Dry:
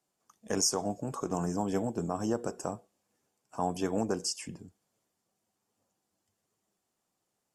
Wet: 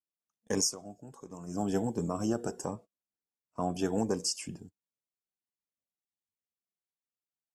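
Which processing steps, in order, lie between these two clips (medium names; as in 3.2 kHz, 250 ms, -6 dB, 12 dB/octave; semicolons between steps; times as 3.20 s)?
gate -47 dBFS, range -26 dB; 0.59–1.63 s: dip -13.5 dB, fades 0.17 s; 2.65–3.79 s: treble shelf 7.4 kHz -11.5 dB; Shepard-style phaser rising 1.4 Hz; trim +1.5 dB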